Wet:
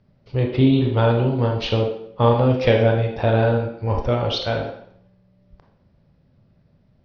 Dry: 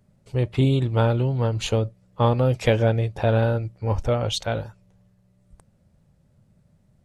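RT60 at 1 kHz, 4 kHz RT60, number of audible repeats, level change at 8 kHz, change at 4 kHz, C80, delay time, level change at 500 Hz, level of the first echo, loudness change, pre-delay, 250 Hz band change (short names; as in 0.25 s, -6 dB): 0.65 s, 0.60 s, none, under -10 dB, +3.0 dB, 8.5 dB, none, +4.0 dB, none, +3.0 dB, 20 ms, +5.5 dB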